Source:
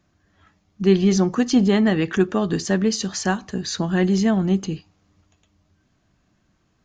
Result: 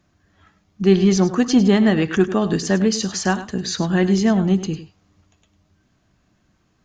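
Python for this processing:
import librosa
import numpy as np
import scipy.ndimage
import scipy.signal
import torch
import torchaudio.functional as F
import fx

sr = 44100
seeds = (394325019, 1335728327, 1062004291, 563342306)

p1 = fx.clip_asym(x, sr, top_db=-11.5, bottom_db=-10.0)
p2 = x + (p1 * 10.0 ** (-11.5 / 20.0))
y = p2 + 10.0 ** (-13.0 / 20.0) * np.pad(p2, (int(101 * sr / 1000.0), 0))[:len(p2)]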